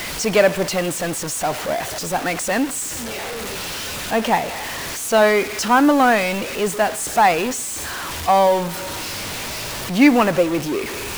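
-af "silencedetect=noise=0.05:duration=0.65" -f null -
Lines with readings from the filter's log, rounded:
silence_start: 2.89
silence_end: 4.11 | silence_duration: 1.22
silence_start: 8.71
silence_end: 9.90 | silence_duration: 1.19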